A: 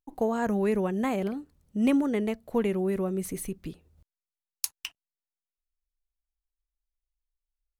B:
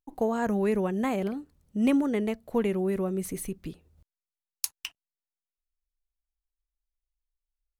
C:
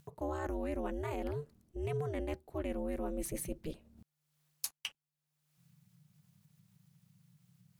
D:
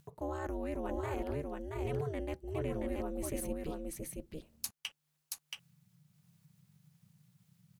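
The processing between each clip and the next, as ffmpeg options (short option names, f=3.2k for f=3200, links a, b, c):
-af anull
-af "areverse,acompressor=threshold=-35dB:ratio=5,areverse,aeval=exprs='val(0)*sin(2*PI*150*n/s)':c=same,acompressor=mode=upward:threshold=-51dB:ratio=2.5,volume=2.5dB"
-af "aecho=1:1:677:0.708,volume=-1dB"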